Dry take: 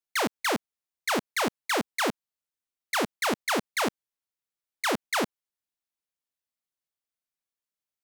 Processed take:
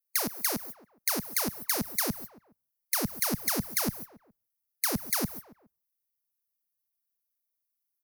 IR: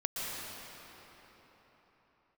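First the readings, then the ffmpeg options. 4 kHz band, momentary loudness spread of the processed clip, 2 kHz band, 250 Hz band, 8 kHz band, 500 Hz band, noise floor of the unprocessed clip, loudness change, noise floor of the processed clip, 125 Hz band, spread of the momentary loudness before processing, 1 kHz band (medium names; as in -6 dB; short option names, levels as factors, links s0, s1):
-3.5 dB, 14 LU, -8.0 dB, -2.0 dB, +4.5 dB, -8.0 dB, under -85 dBFS, -0.5 dB, -83 dBFS, +5.5 dB, 4 LU, -9.0 dB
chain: -filter_complex "[0:a]aeval=exprs='val(0)+0.5*0.00944*sgn(val(0))':c=same,agate=range=0.0398:threshold=0.00631:ratio=16:detection=peak,afftdn=nr=27:nf=-51,equalizer=f=7600:w=2.1:g=-15,asplit=2[s0][s1];[s1]adelay=139,lowpass=f=1800:p=1,volume=0.1,asplit=2[s2][s3];[s3]adelay=139,lowpass=f=1800:p=1,volume=0.36,asplit=2[s4][s5];[s5]adelay=139,lowpass=f=1800:p=1,volume=0.36[s6];[s0][s2][s4][s6]amix=inputs=4:normalize=0,acrossover=split=160|1400[s7][s8][s9];[s7]dynaudnorm=f=690:g=5:m=4.22[s10];[s9]aexciter=amount=7.1:drive=8.2:freq=4900[s11];[s10][s8][s11]amix=inputs=3:normalize=0,acrossover=split=190[s12][s13];[s13]acompressor=threshold=0.0355:ratio=2.5[s14];[s12][s14]amix=inputs=2:normalize=0"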